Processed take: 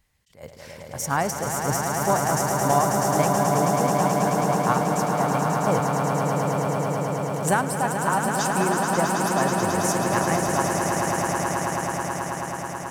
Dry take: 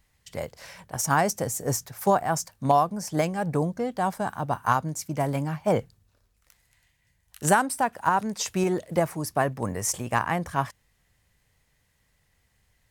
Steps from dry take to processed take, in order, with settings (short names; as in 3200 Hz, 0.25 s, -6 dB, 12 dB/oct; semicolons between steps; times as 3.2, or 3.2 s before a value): swelling echo 0.108 s, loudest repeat 8, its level -6.5 dB; attack slew limiter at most 180 dB/s; gain -1.5 dB